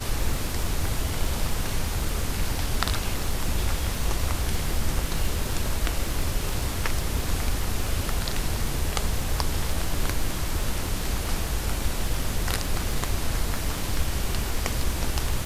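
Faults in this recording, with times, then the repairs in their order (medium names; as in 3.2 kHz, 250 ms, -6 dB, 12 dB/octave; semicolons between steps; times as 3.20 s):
crackle 35 per s -29 dBFS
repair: de-click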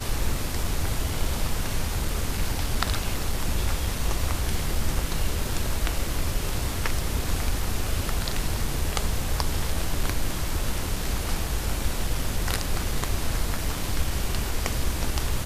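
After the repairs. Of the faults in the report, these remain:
nothing left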